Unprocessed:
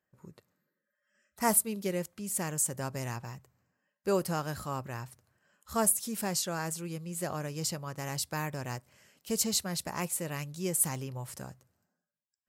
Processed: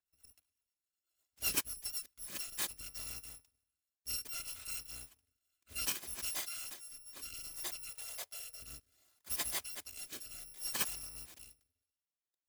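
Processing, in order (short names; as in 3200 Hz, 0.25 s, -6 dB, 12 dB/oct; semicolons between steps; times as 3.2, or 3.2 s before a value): FFT order left unsorted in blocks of 256 samples; rotary speaker horn 8 Hz, later 0.65 Hz, at 2.04; 7.9–8.61 resonant low shelf 380 Hz -9 dB, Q 3; gain -6 dB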